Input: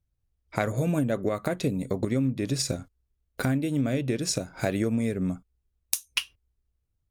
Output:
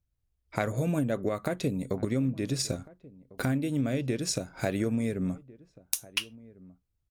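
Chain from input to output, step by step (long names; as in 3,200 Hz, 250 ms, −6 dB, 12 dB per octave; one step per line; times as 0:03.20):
slap from a distant wall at 240 metres, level −21 dB
level −2.5 dB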